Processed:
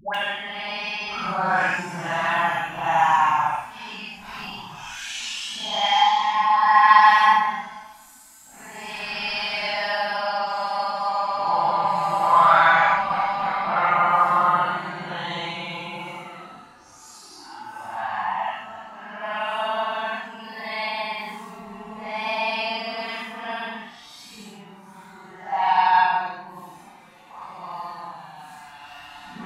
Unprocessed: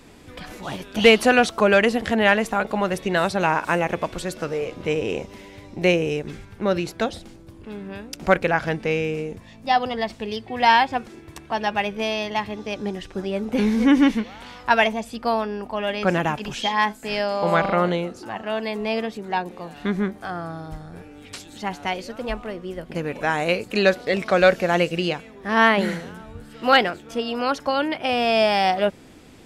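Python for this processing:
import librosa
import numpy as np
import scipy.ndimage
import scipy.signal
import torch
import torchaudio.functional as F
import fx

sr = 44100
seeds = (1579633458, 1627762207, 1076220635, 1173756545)

y = fx.paulstretch(x, sr, seeds[0], factor=7.4, window_s=0.05, from_s=15.88)
y = fx.low_shelf_res(y, sr, hz=650.0, db=-11.0, q=3.0)
y = fx.dispersion(y, sr, late='highs', ms=147.0, hz=780.0)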